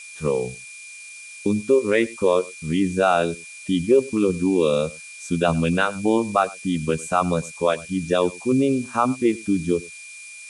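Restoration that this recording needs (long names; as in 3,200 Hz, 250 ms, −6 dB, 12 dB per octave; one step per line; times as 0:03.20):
notch filter 2,400 Hz, Q 30
noise reduction from a noise print 27 dB
echo removal 100 ms −21.5 dB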